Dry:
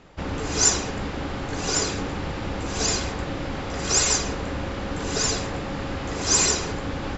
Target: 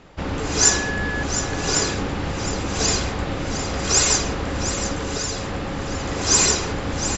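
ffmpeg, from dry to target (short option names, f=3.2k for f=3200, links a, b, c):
-filter_complex "[0:a]asettb=1/sr,asplit=3[a][b][c];[a]atrim=end=0.624[d];[b]atrim=start=0.62:end=1.23,asetpts=PTS-STARTPTS,afade=t=in:d=0.004:c=qsin,afade=t=out:st=0.606:d=0.004:c=qsin,aeval=exprs='val(0)+0.0355*sin(2*PI*1700*n/s)':c=same[e];[c]atrim=start=1.226[f];[d][e]acrossfade=d=0.004:c1=hsin:c2=qsin[g];[g][f]acrossfade=d=0.004:c1=qsin:c2=hsin,asettb=1/sr,asplit=3[h][i][j];[h]atrim=end=4.954[k];[i]atrim=start=4.95:end=5.92,asetpts=PTS-STARTPTS,afade=t=in:d=0.004:c=qsin,afade=t=out:st=0.966:d=0.004:c=qsin,acompressor=threshold=-26dB:ratio=6[l];[j]atrim=start=5.916[m];[k][l]acrossfade=d=0.004:c1=hsin:c2=qsin[n];[n][m]acrossfade=d=0.004:c1=qsin:c2=hsin,aecho=1:1:711:0.316,volume=3dB"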